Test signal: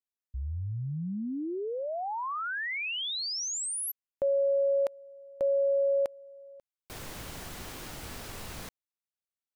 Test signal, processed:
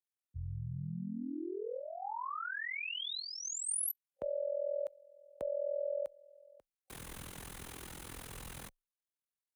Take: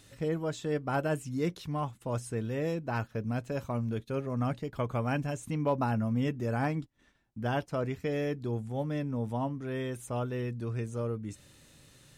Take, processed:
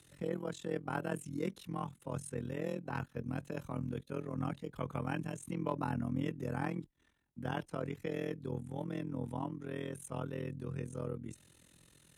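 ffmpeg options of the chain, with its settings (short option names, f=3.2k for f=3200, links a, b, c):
-af "superequalizer=8b=0.631:14b=0.631:16b=1.78,tremolo=f=42:d=0.889,afreqshift=19,volume=-2.5dB"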